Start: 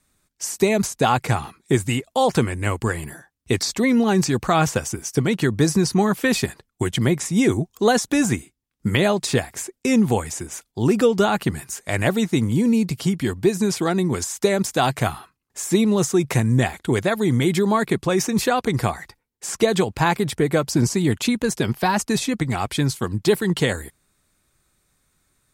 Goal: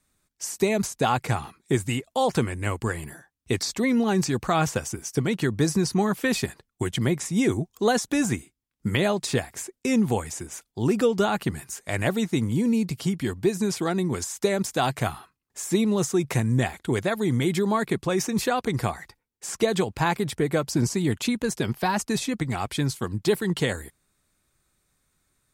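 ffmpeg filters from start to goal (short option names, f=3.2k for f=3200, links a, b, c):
-af "volume=-4.5dB"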